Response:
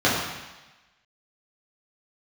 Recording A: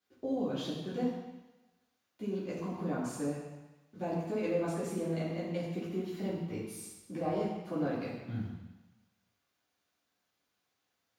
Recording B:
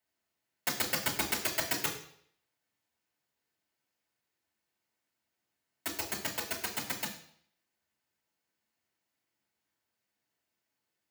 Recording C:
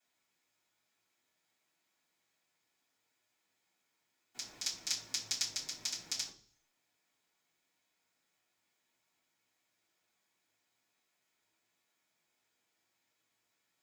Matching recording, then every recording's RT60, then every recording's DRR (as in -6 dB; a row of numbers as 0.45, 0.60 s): A; 1.1, 0.65, 0.45 s; -9.0, -2.0, -16.0 dB